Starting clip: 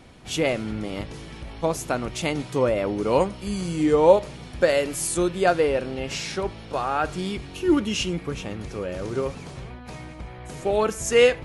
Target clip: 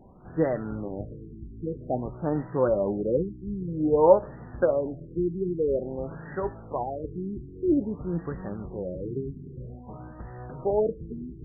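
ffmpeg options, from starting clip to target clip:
-af "flanger=delay=4.9:depth=4.5:regen=61:speed=0.35:shape=triangular,afftfilt=real='re*lt(b*sr/1024,400*pow(2000/400,0.5+0.5*sin(2*PI*0.51*pts/sr)))':imag='im*lt(b*sr/1024,400*pow(2000/400,0.5+0.5*sin(2*PI*0.51*pts/sr)))':win_size=1024:overlap=0.75,volume=2dB"

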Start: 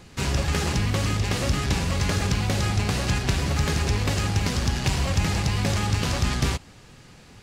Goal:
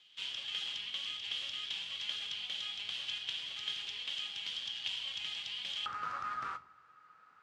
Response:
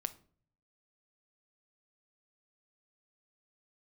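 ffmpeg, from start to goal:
-filter_complex "[0:a]asetnsamples=n=441:p=0,asendcmd='5.86 bandpass f 1300',bandpass=f=3.2k:t=q:w=13:csg=0[a];[1:a]atrim=start_sample=2205[b];[a][b]afir=irnorm=-1:irlink=0,volume=6dB"

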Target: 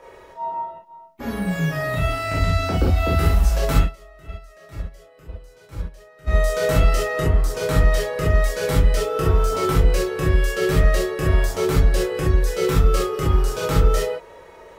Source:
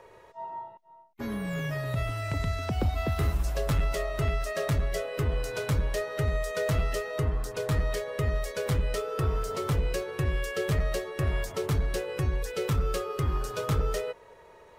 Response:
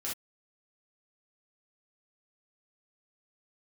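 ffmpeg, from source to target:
-filter_complex "[0:a]asplit=3[a][b][c];[a]afade=t=out:st=3.8:d=0.02[d];[b]agate=range=-25dB:threshold=-22dB:ratio=16:detection=peak,afade=t=in:st=3.8:d=0.02,afade=t=out:st=6.26:d=0.02[e];[c]afade=t=in:st=6.26:d=0.02[f];[d][e][f]amix=inputs=3:normalize=0[g];[1:a]atrim=start_sample=2205[h];[g][h]afir=irnorm=-1:irlink=0,volume=7.5dB"

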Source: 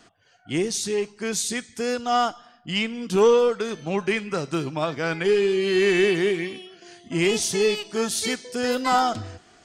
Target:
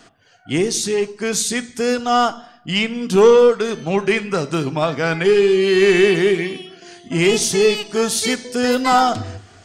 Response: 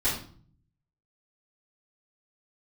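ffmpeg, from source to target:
-filter_complex "[0:a]acontrast=54,asplit=2[a][b];[1:a]atrim=start_sample=2205,lowpass=2.4k[c];[b][c]afir=irnorm=-1:irlink=0,volume=-23dB[d];[a][d]amix=inputs=2:normalize=0"

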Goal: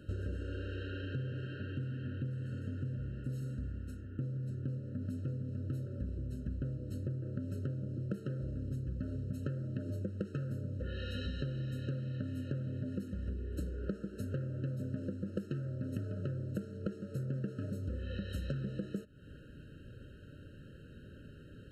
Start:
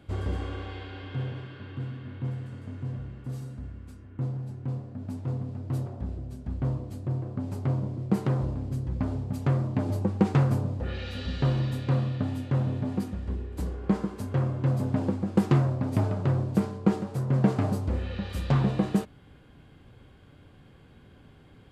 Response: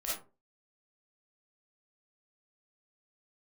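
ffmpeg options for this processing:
-af "acompressor=threshold=-36dB:ratio=12,afftfilt=real='re*eq(mod(floor(b*sr/1024/630),2),0)':imag='im*eq(mod(floor(b*sr/1024/630),2),0)':win_size=1024:overlap=0.75,volume=1.5dB"

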